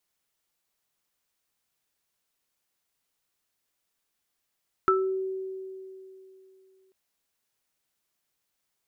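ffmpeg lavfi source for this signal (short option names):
-f lavfi -i "aevalsrc='0.0891*pow(10,-3*t/3.01)*sin(2*PI*380*t)+0.168*pow(10,-3*t/0.31)*sin(2*PI*1320*t)':d=2.04:s=44100"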